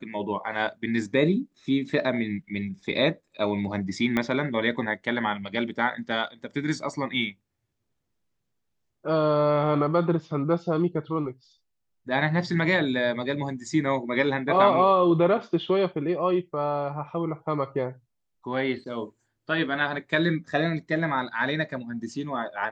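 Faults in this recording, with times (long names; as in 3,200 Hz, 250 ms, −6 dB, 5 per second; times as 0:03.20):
0:04.17: click −13 dBFS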